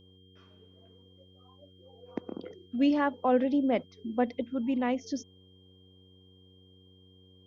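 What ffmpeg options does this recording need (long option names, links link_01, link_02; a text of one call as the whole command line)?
ffmpeg -i in.wav -af "bandreject=frequency=93.4:width_type=h:width=4,bandreject=frequency=186.8:width_type=h:width=4,bandreject=frequency=280.2:width_type=h:width=4,bandreject=frequency=373.6:width_type=h:width=4,bandreject=frequency=467:width_type=h:width=4,bandreject=frequency=3200:width=30" out.wav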